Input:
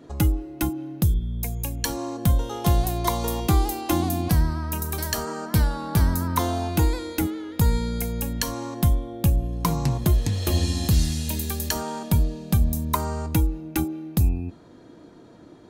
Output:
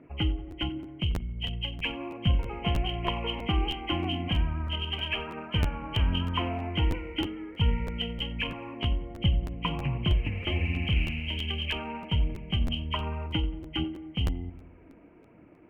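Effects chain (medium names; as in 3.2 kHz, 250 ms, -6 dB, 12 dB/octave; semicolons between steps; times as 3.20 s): knee-point frequency compression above 1.9 kHz 4:1; level-controlled noise filter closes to 2.7 kHz, open at -15 dBFS; phaser 1.3 Hz, delay 4.6 ms, feedback 31%; on a send: filtered feedback delay 91 ms, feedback 63%, low-pass 1.9 kHz, level -15.5 dB; on the sum: crackling interface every 0.32 s, samples 512, repeat, from 0.50 s; attacks held to a fixed rise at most 570 dB/s; trim -7.5 dB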